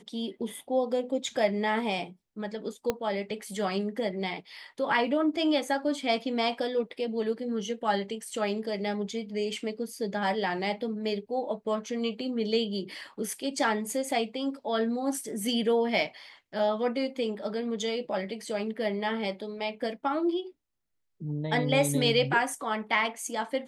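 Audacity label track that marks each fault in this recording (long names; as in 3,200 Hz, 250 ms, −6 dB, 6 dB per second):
2.900000	2.900000	click −13 dBFS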